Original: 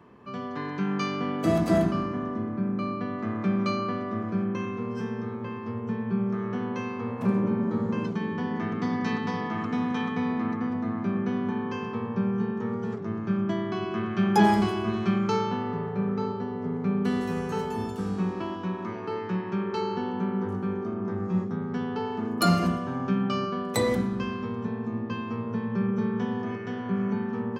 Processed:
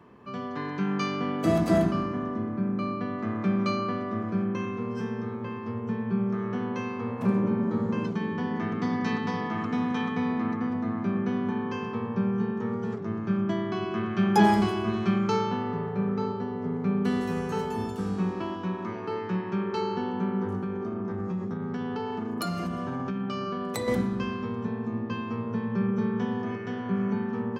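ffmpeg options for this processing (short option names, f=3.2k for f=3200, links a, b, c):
-filter_complex "[0:a]asettb=1/sr,asplit=3[a][b][c];[a]atrim=end=20.634[d];[b]atrim=start=20.63:end=23.88,asetpts=PTS-STARTPTS,afade=t=in:d=0.004:c=qsin,afade=t=out:st=3.246:d=0.004:c=qsin,acompressor=threshold=-27dB:ratio=6:attack=3.2:release=140:knee=1:detection=peak[e];[c]atrim=start=23.876[f];[d][e]acrossfade=d=0.004:c1=hsin:c2=qsin[g];[g][f]acrossfade=d=0.004:c1=qsin:c2=hsin"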